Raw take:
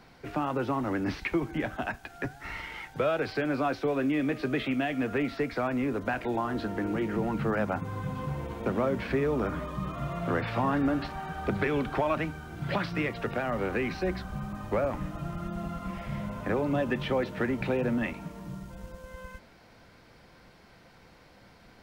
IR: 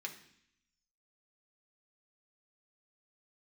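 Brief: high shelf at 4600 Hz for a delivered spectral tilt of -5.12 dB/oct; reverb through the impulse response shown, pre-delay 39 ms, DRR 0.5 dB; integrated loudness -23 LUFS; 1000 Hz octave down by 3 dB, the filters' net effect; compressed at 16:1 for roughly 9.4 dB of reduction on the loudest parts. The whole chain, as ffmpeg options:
-filter_complex "[0:a]equalizer=f=1k:t=o:g=-4.5,highshelf=f=4.6k:g=5,acompressor=threshold=-33dB:ratio=16,asplit=2[a][b];[1:a]atrim=start_sample=2205,adelay=39[c];[b][c]afir=irnorm=-1:irlink=0,volume=0.5dB[d];[a][d]amix=inputs=2:normalize=0,volume=13.5dB"

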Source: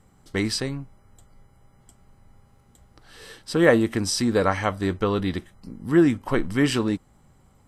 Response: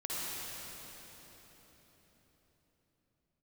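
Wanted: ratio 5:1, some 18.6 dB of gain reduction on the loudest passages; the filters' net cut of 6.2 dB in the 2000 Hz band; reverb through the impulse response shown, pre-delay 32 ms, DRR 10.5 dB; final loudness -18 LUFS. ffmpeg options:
-filter_complex "[0:a]equalizer=f=2k:t=o:g=-7.5,acompressor=threshold=-34dB:ratio=5,asplit=2[a][b];[1:a]atrim=start_sample=2205,adelay=32[c];[b][c]afir=irnorm=-1:irlink=0,volume=-15dB[d];[a][d]amix=inputs=2:normalize=0,volume=19.5dB"

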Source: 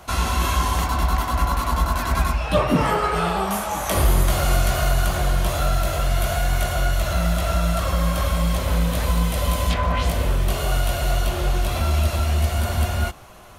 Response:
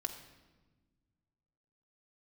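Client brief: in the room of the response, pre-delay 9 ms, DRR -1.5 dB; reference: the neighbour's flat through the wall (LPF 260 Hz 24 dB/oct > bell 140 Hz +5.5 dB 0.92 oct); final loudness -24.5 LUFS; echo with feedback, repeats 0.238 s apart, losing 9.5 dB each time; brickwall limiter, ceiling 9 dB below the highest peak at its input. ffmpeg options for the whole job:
-filter_complex "[0:a]alimiter=limit=-16.5dB:level=0:latency=1,aecho=1:1:238|476|714|952:0.335|0.111|0.0365|0.012,asplit=2[a][b];[1:a]atrim=start_sample=2205,adelay=9[c];[b][c]afir=irnorm=-1:irlink=0,volume=1.5dB[d];[a][d]amix=inputs=2:normalize=0,lowpass=f=260:w=0.5412,lowpass=f=260:w=1.3066,equalizer=f=140:t=o:w=0.92:g=5.5,volume=-2dB"

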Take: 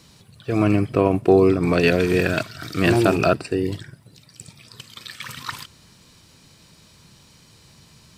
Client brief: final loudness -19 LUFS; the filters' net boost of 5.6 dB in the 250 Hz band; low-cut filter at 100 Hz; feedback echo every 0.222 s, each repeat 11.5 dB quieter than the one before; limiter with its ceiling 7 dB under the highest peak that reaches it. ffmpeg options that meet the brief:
-af "highpass=100,equalizer=f=250:t=o:g=8,alimiter=limit=-7.5dB:level=0:latency=1,aecho=1:1:222|444|666:0.266|0.0718|0.0194,volume=-0.5dB"

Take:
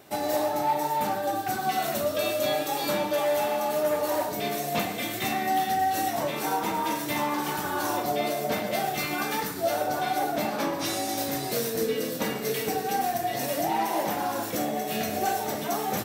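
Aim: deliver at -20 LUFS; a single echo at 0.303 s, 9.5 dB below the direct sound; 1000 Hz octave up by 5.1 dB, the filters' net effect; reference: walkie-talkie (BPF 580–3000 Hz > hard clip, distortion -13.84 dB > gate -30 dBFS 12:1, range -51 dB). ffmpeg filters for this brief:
-af "highpass=580,lowpass=3k,equalizer=f=1k:t=o:g=8.5,aecho=1:1:303:0.335,asoftclip=type=hard:threshold=-20.5dB,agate=range=-51dB:threshold=-30dB:ratio=12,volume=6.5dB"

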